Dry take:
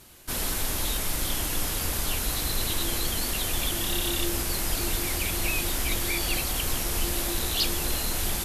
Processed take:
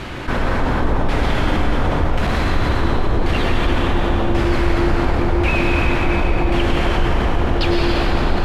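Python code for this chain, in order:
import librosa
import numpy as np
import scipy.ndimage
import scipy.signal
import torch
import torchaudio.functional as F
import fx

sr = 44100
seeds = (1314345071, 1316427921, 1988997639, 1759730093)

p1 = fx.rider(x, sr, range_db=10, speed_s=0.5)
p2 = x + (p1 * librosa.db_to_amplitude(1.5))
p3 = fx.filter_lfo_lowpass(p2, sr, shape='saw_down', hz=0.92, low_hz=670.0, high_hz=2400.0, q=1.0)
p4 = fx.clip_hard(p3, sr, threshold_db=-21.0, at=(1.91, 2.43))
p5 = fx.rev_plate(p4, sr, seeds[0], rt60_s=4.0, hf_ratio=0.85, predelay_ms=90, drr_db=-3.0)
y = fx.env_flatten(p5, sr, amount_pct=50)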